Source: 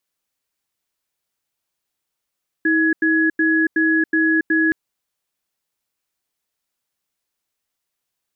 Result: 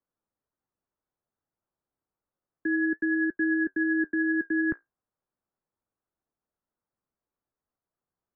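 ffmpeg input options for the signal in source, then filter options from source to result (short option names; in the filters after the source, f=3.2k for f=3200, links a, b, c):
-f lavfi -i "aevalsrc='0.15*(sin(2*PI*321*t)+sin(2*PI*1680*t))*clip(min(mod(t,0.37),0.28-mod(t,0.37))/0.005,0,1)':d=2.07:s=44100"
-filter_complex "[0:a]lowpass=f=1.4k:w=0.5412,lowpass=f=1.4k:w=1.3066,acrossover=split=180|520[a][b][c];[b]alimiter=level_in=3.5dB:limit=-24dB:level=0:latency=1:release=365,volume=-3.5dB[d];[c]flanger=delay=7.7:depth=9.9:regen=49:speed=0.31:shape=triangular[e];[a][d][e]amix=inputs=3:normalize=0"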